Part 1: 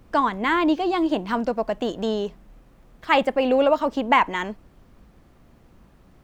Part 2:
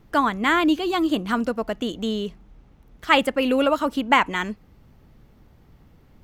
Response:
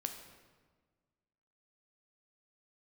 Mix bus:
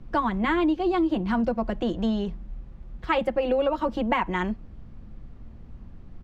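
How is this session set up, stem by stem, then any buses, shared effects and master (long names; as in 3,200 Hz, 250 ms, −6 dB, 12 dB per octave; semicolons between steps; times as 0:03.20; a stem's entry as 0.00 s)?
−3.5 dB, 0.00 s, no send, low-pass filter 5,000 Hz 12 dB per octave; parametric band 220 Hz +11 dB 0.39 octaves
−7.0 dB, 5.1 ms, no send, spectral tilt −4 dB per octave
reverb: not used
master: downward compressor, threshold −20 dBFS, peak gain reduction 7.5 dB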